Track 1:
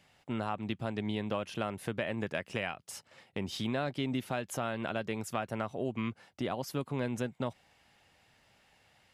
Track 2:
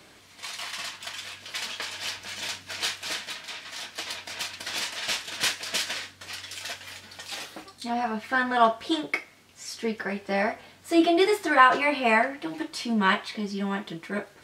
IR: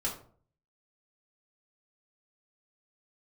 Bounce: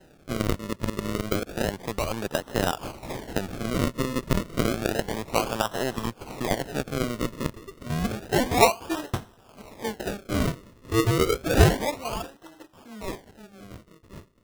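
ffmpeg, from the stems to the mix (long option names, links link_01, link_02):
-filter_complex "[0:a]aeval=exprs='if(lt(val(0),0),0.447*val(0),val(0))':channel_layout=same,volume=2.5dB,asplit=2[link_01][link_02];[1:a]highshelf=frequency=2300:gain=-7.5,acompressor=mode=upward:threshold=-36dB:ratio=2.5,adynamicequalizer=threshold=0.0112:dfrequency=2000:dqfactor=0.7:tfrequency=2000:tqfactor=0.7:attack=5:release=100:ratio=0.375:range=1.5:mode=boostabove:tftype=highshelf,volume=-7dB,afade=type=in:start_time=2.58:duration=0.63:silence=0.237137,afade=type=out:start_time=11.45:duration=0.7:silence=0.237137[link_03];[link_02]apad=whole_len=636513[link_04];[link_03][link_04]sidechaincompress=threshold=-43dB:ratio=5:attack=16:release=108[link_05];[link_01][link_05]amix=inputs=2:normalize=0,acrossover=split=4700[link_06][link_07];[link_07]acompressor=threshold=-52dB:ratio=4:attack=1:release=60[link_08];[link_06][link_08]amix=inputs=2:normalize=0,equalizer=frequency=1400:width=0.34:gain=11.5,acrusher=samples=38:mix=1:aa=0.000001:lfo=1:lforange=38:lforate=0.3"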